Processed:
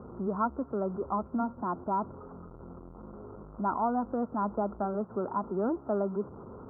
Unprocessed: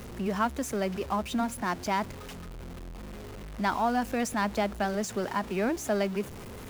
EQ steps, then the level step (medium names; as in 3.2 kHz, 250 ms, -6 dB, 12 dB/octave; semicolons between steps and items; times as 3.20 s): high-pass 94 Hz 6 dB/octave; rippled Chebyshev low-pass 1.4 kHz, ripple 3 dB; 0.0 dB